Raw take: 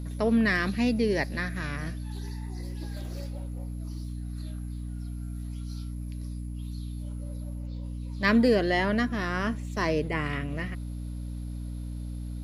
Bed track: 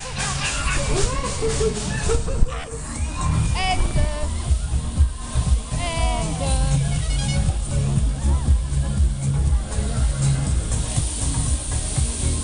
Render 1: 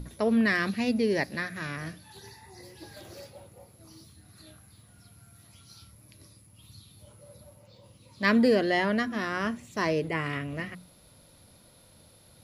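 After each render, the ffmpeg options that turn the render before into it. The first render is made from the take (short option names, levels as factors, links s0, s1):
-af "bandreject=f=60:t=h:w=6,bandreject=f=120:t=h:w=6,bandreject=f=180:t=h:w=6,bandreject=f=240:t=h:w=6,bandreject=f=300:t=h:w=6"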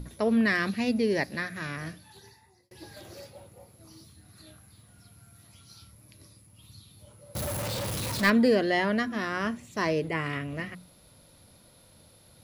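-filter_complex "[0:a]asettb=1/sr,asplit=3[s0][s1][s2];[s0]atrim=end=7.354[s3];[s1]atrim=start=7.35:end=8.3,asetpts=PTS-STARTPTS,afade=t=in:d=0.004:c=qsin,afade=t=out:st=0.946:d=0.004:c=qsin,aeval=exprs='val(0)+0.5*0.0473*sgn(val(0))':c=same[s4];[s2]atrim=start=8.296[s5];[s3][s4]acrossfade=d=0.004:c1=hsin:c2=qsin[s6];[s6][s5]acrossfade=d=0.004:c1=qsin:c2=hsin,asplit=2[s7][s8];[s7]atrim=end=2.71,asetpts=PTS-STARTPTS,afade=t=out:st=1.91:d=0.8[s9];[s8]atrim=start=2.71,asetpts=PTS-STARTPTS,afade=t=in:d=0.004:c=hsin[s10];[s9][s10]concat=n=2:v=0:a=1"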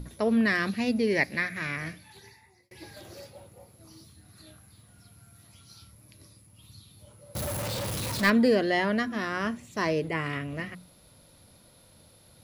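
-filter_complex "[0:a]asettb=1/sr,asplit=3[s0][s1][s2];[s0]atrim=end=1.074[s3];[s1]atrim=start=1.07:end=2.91,asetpts=PTS-STARTPTS,afade=t=in:d=0.004:c=qsin,afade=t=out:st=1.836:d=0.004:c=qsin,equalizer=f=2200:w=3.9:g=12[s4];[s2]atrim=start=2.906[s5];[s3][s4]acrossfade=d=0.004:c1=hsin:c2=qsin[s6];[s6][s5]acrossfade=d=0.004:c1=qsin:c2=hsin"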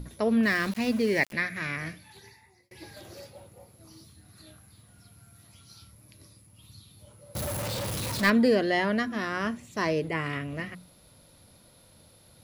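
-filter_complex "[0:a]asettb=1/sr,asplit=3[s0][s1][s2];[s0]atrim=end=0.434[s3];[s1]atrim=start=0.43:end=1.33,asetpts=PTS-STARTPTS,afade=t=in:d=0.004:c=qsin,afade=t=out:st=0.896:d=0.004:c=qsin,aeval=exprs='val(0)*gte(abs(val(0)),0.0141)':c=same[s4];[s2]atrim=start=1.326[s5];[s3][s4]acrossfade=d=0.004:c1=hsin:c2=qsin[s6];[s6][s5]acrossfade=d=0.004:c1=qsin:c2=hsin"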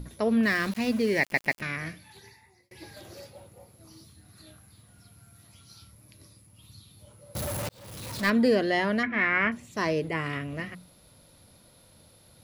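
-filter_complex "[0:a]asettb=1/sr,asplit=3[s0][s1][s2];[s0]atrim=end=9.034[s3];[s1]atrim=start=9.03:end=9.52,asetpts=PTS-STARTPTS,afade=t=in:d=0.004:c=qsin,afade=t=out:st=0.486:d=0.004:c=qsin,lowpass=f=2200:t=q:w=12[s4];[s2]atrim=start=9.516[s5];[s3][s4]acrossfade=d=0.004:c1=hsin:c2=qsin[s6];[s6][s5]acrossfade=d=0.004:c1=qsin:c2=hsin,asplit=5[s7][s8][s9][s10][s11];[s7]atrim=end=1.342[s12];[s8]atrim=start=1.198:end=1.342[s13];[s9]atrim=start=1.198:end=1.342[s14];[s10]atrim=start=1.618:end=7.69,asetpts=PTS-STARTPTS,afade=t=out:st=6.068:d=0.004:c=hsin[s15];[s11]atrim=start=7.69,asetpts=PTS-STARTPTS,afade=t=in:d=0.78[s16];[s12][s13]acrossfade=d=0.004:c1=hsin:c2=hsin[s17];[s17][s14]acrossfade=d=0.004:c1=hsin:c2=hsin[s18];[s15][s16]concat=n=2:v=0:a=1[s19];[s18][s19]acrossfade=d=0.004:c1=hsin:c2=hsin"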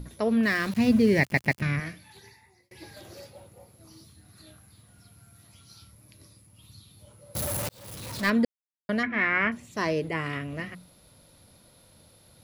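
-filter_complex "[0:a]asettb=1/sr,asplit=3[s0][s1][s2];[s0]atrim=end=0.734[s3];[s1]atrim=start=0.73:end=1.8,asetpts=PTS-STARTPTS,afade=t=in:d=0.004:c=qsin,afade=t=out:st=1.066:d=0.004:c=qsin,equalizer=f=110:t=o:w=2:g=15[s4];[s2]atrim=start=1.796[s5];[s3][s4]acrossfade=d=0.004:c1=hsin:c2=qsin[s6];[s6][s5]acrossfade=d=0.004:c1=qsin:c2=hsin,asettb=1/sr,asplit=3[s7][s8][s9];[s7]atrim=end=7.344[s10];[s8]atrim=start=7.34:end=7.95,asetpts=PTS-STARTPTS,afade=t=in:d=0.004:c=qsin,afade=t=out:st=0.606:d=0.004:c=qsin,highshelf=f=6400:g=6.5[s11];[s9]atrim=start=7.946[s12];[s10][s11]acrossfade=d=0.004:c1=hsin:c2=qsin[s13];[s13][s12]acrossfade=d=0.004:c1=qsin:c2=hsin,asplit=3[s14][s15][s16];[s14]atrim=end=8.45,asetpts=PTS-STARTPTS,afade=t=out:st=8.446:d=0.004:c=hsin[s17];[s15]atrim=start=8.45:end=8.89,asetpts=PTS-STARTPTS,volume=0[s18];[s16]atrim=start=8.89,asetpts=PTS-STARTPTS,afade=t=in:d=0.004:c=hsin[s19];[s17][s18][s19]concat=n=3:v=0:a=1"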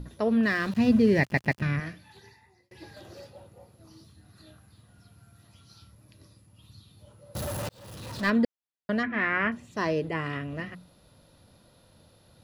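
-af "highshelf=f=6700:g=-11.5,bandreject=f=2200:w=9"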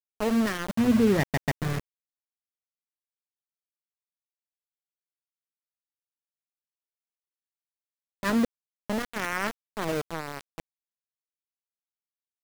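-af "adynamicsmooth=sensitivity=1:basefreq=690,aeval=exprs='val(0)*gte(abs(val(0)),0.0473)':c=same"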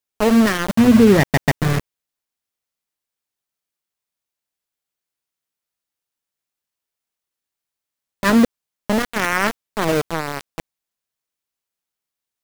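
-af "volume=3.35,alimiter=limit=0.708:level=0:latency=1"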